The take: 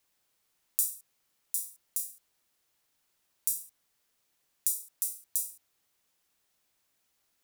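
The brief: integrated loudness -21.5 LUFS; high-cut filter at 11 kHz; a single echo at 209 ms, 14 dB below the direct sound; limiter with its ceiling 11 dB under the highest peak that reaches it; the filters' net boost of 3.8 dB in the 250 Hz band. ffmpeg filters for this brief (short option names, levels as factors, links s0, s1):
-af "lowpass=11000,equalizer=f=250:t=o:g=5,alimiter=limit=0.106:level=0:latency=1,aecho=1:1:209:0.2,volume=8.41"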